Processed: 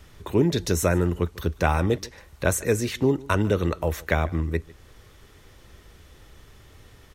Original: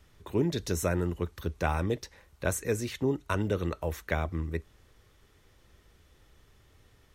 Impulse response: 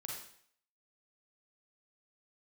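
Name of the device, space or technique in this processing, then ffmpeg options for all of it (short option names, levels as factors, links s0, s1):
parallel compression: -filter_complex "[0:a]asplit=2[s0][s1];[s1]acompressor=threshold=0.00447:ratio=6,volume=0.596[s2];[s0][s2]amix=inputs=2:normalize=0,aecho=1:1:148:0.0794,volume=2.11"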